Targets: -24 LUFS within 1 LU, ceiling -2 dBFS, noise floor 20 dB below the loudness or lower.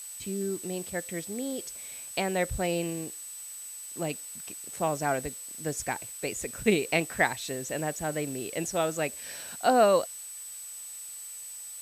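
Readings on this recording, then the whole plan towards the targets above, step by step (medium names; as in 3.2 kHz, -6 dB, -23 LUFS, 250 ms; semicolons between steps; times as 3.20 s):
steady tone 8 kHz; tone level -40 dBFS; noise floor -42 dBFS; noise floor target -51 dBFS; loudness -31.0 LUFS; peak level -10.0 dBFS; loudness target -24.0 LUFS
-> band-stop 8 kHz, Q 30; noise reduction 9 dB, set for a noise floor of -42 dBFS; trim +7 dB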